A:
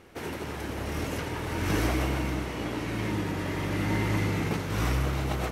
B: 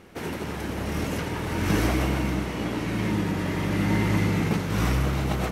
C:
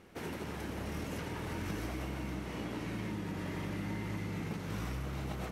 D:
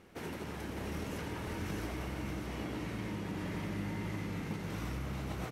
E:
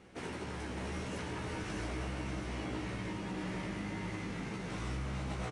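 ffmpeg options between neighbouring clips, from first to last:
ffmpeg -i in.wav -af "equalizer=frequency=190:width_type=o:width=0.53:gain=6.5,volume=2.5dB" out.wav
ffmpeg -i in.wav -af "acompressor=threshold=-27dB:ratio=6,volume=-8dB" out.wav
ffmpeg -i in.wav -af "aecho=1:1:600:0.473,volume=-1dB" out.wav
ffmpeg -i in.wav -filter_complex "[0:a]acrossover=split=610[link_01][link_02];[link_01]asoftclip=type=tanh:threshold=-36dB[link_03];[link_03][link_02]amix=inputs=2:normalize=0,asplit=2[link_04][link_05];[link_05]adelay=16,volume=-4dB[link_06];[link_04][link_06]amix=inputs=2:normalize=0,aresample=22050,aresample=44100" out.wav

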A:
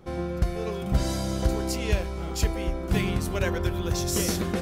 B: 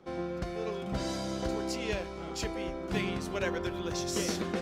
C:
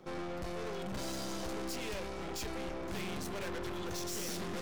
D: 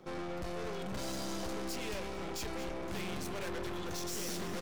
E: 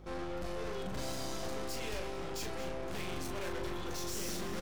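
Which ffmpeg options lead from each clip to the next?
ffmpeg -i in.wav -filter_complex "[0:a]acrossover=split=170 7400:gain=0.224 1 0.2[link_01][link_02][link_03];[link_01][link_02][link_03]amix=inputs=3:normalize=0,volume=-3.5dB" out.wav
ffmpeg -i in.wav -af "highshelf=frequency=9100:gain=10,aeval=exprs='(tanh(141*val(0)+0.75)-tanh(0.75))/141':channel_layout=same,volume=5dB" out.wav
ffmpeg -i in.wav -af "aecho=1:1:224:0.224" out.wav
ffmpeg -i in.wav -filter_complex "[0:a]aeval=exprs='val(0)+0.00282*(sin(2*PI*50*n/s)+sin(2*PI*2*50*n/s)/2+sin(2*PI*3*50*n/s)/3+sin(2*PI*4*50*n/s)/4+sin(2*PI*5*50*n/s)/5)':channel_layout=same,asplit=2[link_01][link_02];[link_02]adelay=38,volume=-5dB[link_03];[link_01][link_03]amix=inputs=2:normalize=0,volume=-1.5dB" out.wav

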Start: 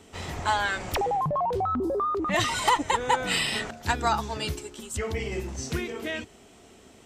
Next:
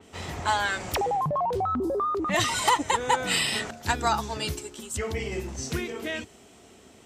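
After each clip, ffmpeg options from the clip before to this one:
ffmpeg -i in.wav -af "highpass=53,adynamicequalizer=threshold=0.0126:dfrequency=4500:dqfactor=0.7:tfrequency=4500:tqfactor=0.7:attack=5:release=100:ratio=0.375:range=2:mode=boostabove:tftype=highshelf" out.wav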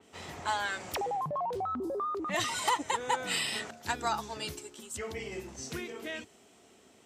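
ffmpeg -i in.wav -af "highpass=frequency=180:poles=1,volume=-6.5dB" out.wav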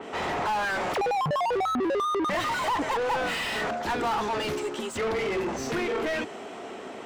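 ffmpeg -i in.wav -filter_complex "[0:a]highshelf=frequency=2600:gain=-11,asplit=2[link_01][link_02];[link_02]highpass=frequency=720:poles=1,volume=35dB,asoftclip=type=tanh:threshold=-19.5dB[link_03];[link_01][link_03]amix=inputs=2:normalize=0,lowpass=frequency=1800:poles=1,volume=-6dB" out.wav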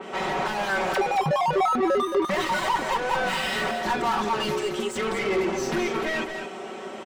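ffmpeg -i in.wav -af "aecho=1:1:5.3:0.78,aecho=1:1:221:0.422" out.wav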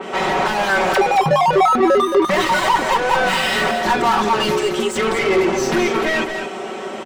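ffmpeg -i in.wav -af "bandreject=frequency=50:width_type=h:width=6,bandreject=frequency=100:width_type=h:width=6,bandreject=frequency=150:width_type=h:width=6,bandreject=frequency=200:width_type=h:width=6,bandreject=frequency=250:width_type=h:width=6,volume=8.5dB" out.wav

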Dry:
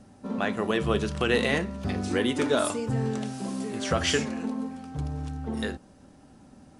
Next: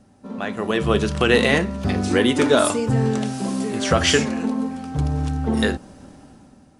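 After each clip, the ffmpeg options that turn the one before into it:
ffmpeg -i in.wav -af "dynaudnorm=framelen=160:gausssize=9:maxgain=13dB,volume=-1.5dB" out.wav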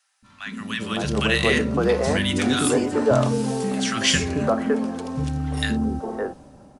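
ffmpeg -i in.wav -filter_complex "[0:a]acrossover=split=150|730|1600[link_01][link_02][link_03][link_04];[link_01]alimiter=level_in=1.5dB:limit=-24dB:level=0:latency=1,volume=-1.5dB[link_05];[link_05][link_02][link_03][link_04]amix=inputs=4:normalize=0,acrossover=split=330|1300[link_06][link_07][link_08];[link_06]adelay=220[link_09];[link_07]adelay=560[link_10];[link_09][link_10][link_08]amix=inputs=3:normalize=0" out.wav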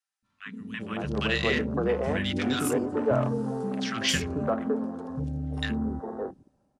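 ffmpeg -i in.wav -af "afwtdn=0.0282,volume=-6dB" out.wav

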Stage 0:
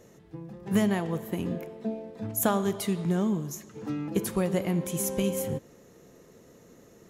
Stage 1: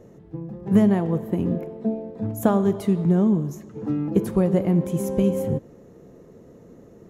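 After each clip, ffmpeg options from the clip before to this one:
ffmpeg -i in.wav -af "tiltshelf=frequency=1300:gain=8.5" out.wav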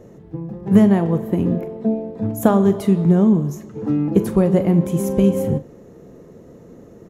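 ffmpeg -i in.wav -filter_complex "[0:a]asplit=2[link_01][link_02];[link_02]adelay=41,volume=-13.5dB[link_03];[link_01][link_03]amix=inputs=2:normalize=0,volume=4.5dB" out.wav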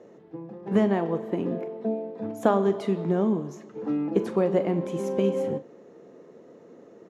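ffmpeg -i in.wav -af "highpass=310,lowpass=5000,volume=-3.5dB" out.wav

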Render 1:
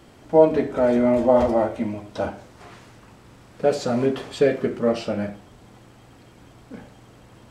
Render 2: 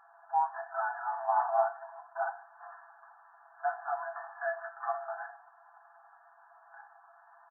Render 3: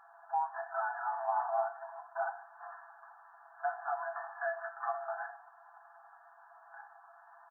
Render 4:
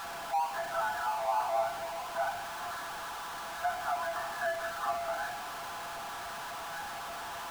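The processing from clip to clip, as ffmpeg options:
ffmpeg -i in.wav -af "afftfilt=real='re*between(b*sr/4096,660,1800)':imag='im*between(b*sr/4096,660,1800)':win_size=4096:overlap=0.75,aecho=1:1:6:0.75,volume=-3dB" out.wav
ffmpeg -i in.wav -af "acompressor=threshold=-34dB:ratio=2,volume=1dB" out.wav
ffmpeg -i in.wav -af "aeval=exprs='val(0)+0.5*0.0168*sgn(val(0))':channel_layout=same" out.wav

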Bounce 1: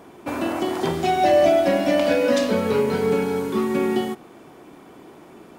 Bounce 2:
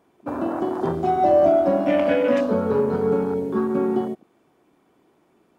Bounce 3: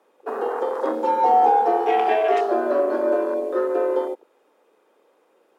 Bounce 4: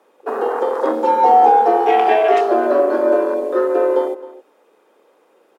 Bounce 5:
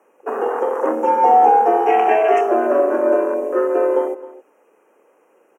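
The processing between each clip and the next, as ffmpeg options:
ffmpeg -i in.wav -af "afwtdn=0.0447" out.wav
ffmpeg -i in.wav -af "afreqshift=150" out.wav
ffmpeg -i in.wav -filter_complex "[0:a]asplit=2[link_01][link_02];[link_02]adelay=262.4,volume=-17dB,highshelf=frequency=4000:gain=-5.9[link_03];[link_01][link_03]amix=inputs=2:normalize=0,volume=5.5dB" out.wav
ffmpeg -i in.wav -af "asuperstop=centerf=4100:order=12:qfactor=1.6,volume=-1dB" out.wav

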